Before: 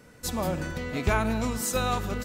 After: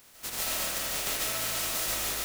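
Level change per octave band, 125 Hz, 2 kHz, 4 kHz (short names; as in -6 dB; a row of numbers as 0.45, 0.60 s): -17.0, -2.5, +6.0 dB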